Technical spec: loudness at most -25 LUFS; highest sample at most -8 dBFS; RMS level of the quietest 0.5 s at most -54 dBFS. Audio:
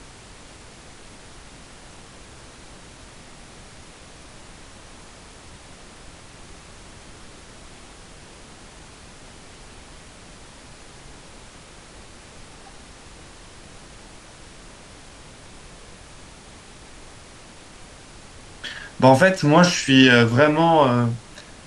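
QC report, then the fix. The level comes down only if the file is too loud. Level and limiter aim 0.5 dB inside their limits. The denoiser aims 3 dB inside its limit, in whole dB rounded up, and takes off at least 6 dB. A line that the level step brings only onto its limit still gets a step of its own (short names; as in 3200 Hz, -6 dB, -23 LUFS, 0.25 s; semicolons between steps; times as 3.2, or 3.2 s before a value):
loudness -16.5 LUFS: fail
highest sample -2.5 dBFS: fail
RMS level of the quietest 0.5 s -44 dBFS: fail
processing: denoiser 6 dB, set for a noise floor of -44 dBFS; gain -9 dB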